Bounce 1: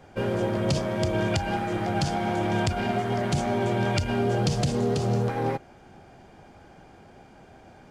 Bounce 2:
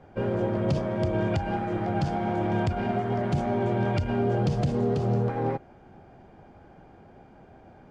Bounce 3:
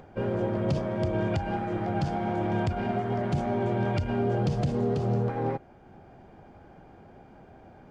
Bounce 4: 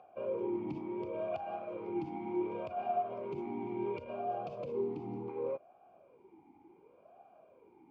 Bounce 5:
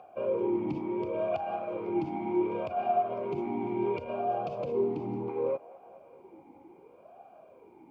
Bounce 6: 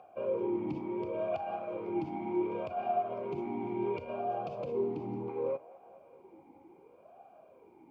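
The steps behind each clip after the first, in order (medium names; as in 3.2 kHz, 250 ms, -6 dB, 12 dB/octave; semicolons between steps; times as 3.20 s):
low-pass 1.2 kHz 6 dB/octave
upward compressor, threshold -44 dBFS; trim -1.5 dB
talking filter a-u 0.69 Hz; trim +1.5 dB
feedback echo behind a band-pass 216 ms, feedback 74%, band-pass 1.1 kHz, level -19 dB; trim +6.5 dB
reverberation, pre-delay 3 ms, DRR 16.5 dB; trim -3.5 dB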